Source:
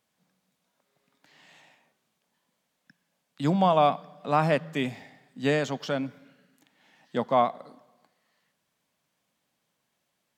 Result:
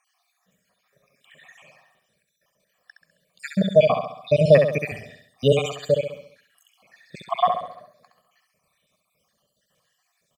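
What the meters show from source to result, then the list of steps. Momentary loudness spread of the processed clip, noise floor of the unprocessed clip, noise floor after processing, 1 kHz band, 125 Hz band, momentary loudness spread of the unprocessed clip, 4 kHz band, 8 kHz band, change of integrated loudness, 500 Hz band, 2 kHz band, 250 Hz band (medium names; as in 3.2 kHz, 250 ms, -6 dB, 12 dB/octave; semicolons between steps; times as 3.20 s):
17 LU, -78 dBFS, -74 dBFS, -1.0 dB, +6.0 dB, 11 LU, +4.5 dB, no reading, +5.5 dB, +8.5 dB, +2.5 dB, +1.0 dB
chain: random holes in the spectrogram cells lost 71%; comb 1.7 ms, depth 68%; dynamic bell 1.4 kHz, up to -4 dB, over -44 dBFS, Q 2; on a send: feedback delay 67 ms, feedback 48%, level -6 dB; on the sum: trim +8.5 dB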